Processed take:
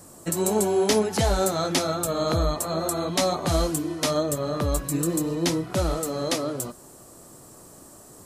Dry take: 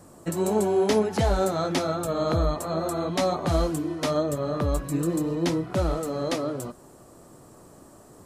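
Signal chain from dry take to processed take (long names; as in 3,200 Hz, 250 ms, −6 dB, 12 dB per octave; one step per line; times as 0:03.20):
high-shelf EQ 3,700 Hz +11 dB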